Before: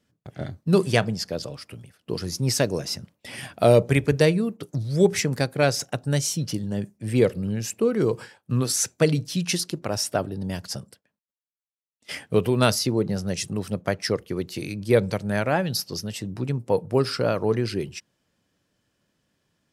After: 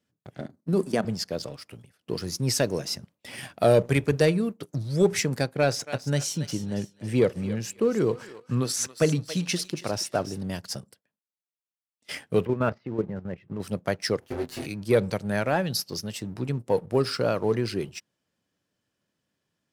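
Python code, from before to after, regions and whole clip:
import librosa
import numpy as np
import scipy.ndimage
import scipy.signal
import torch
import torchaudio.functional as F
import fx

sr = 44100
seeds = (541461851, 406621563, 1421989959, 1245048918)

y = fx.chain(x, sr, fx.peak_eq(hz=3000.0, db=-9.5, octaves=1.4),
    fx.level_steps(step_db=11),
    fx.highpass_res(hz=220.0, q=2.0), at=(0.41, 1.05))
y = fx.chain(y, sr, fx.high_shelf(hz=7600.0, db=-7.5),
    fx.echo_thinned(ms=279, feedback_pct=40, hz=830.0, wet_db=-11.5), at=(5.43, 10.41))
y = fx.chain(y, sr, fx.lowpass(hz=2100.0, slope=24),
    fx.level_steps(step_db=10),
    fx.notch(hz=730.0, q=14.0), at=(12.45, 13.6))
y = fx.chain(y, sr, fx.lower_of_two(delay_ms=7.9),
    fx.peak_eq(hz=1700.0, db=4.5, octaves=0.26),
    fx.doubler(ms=24.0, db=-4.5), at=(14.2, 14.66))
y = fx.highpass(y, sr, hz=87.0, slope=6)
y = fx.leveller(y, sr, passes=1)
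y = y * 10.0 ** (-5.0 / 20.0)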